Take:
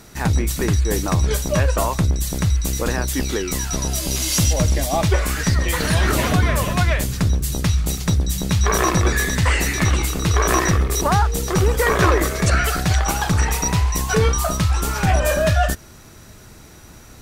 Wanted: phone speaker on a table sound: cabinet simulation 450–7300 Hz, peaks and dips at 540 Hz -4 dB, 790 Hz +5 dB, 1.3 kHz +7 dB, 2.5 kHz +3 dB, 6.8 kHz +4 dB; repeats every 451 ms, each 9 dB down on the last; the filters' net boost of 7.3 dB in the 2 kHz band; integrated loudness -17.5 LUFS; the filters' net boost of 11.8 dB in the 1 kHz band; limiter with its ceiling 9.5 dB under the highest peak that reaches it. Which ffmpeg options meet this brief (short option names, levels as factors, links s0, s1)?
-af "equalizer=f=1000:t=o:g=9,equalizer=f=2000:t=o:g=3,alimiter=limit=0.355:level=0:latency=1,highpass=f=450:w=0.5412,highpass=f=450:w=1.3066,equalizer=f=540:t=q:w=4:g=-4,equalizer=f=790:t=q:w=4:g=5,equalizer=f=1300:t=q:w=4:g=7,equalizer=f=2500:t=q:w=4:g=3,equalizer=f=6800:t=q:w=4:g=4,lowpass=f=7300:w=0.5412,lowpass=f=7300:w=1.3066,aecho=1:1:451|902|1353|1804:0.355|0.124|0.0435|0.0152,volume=1.12"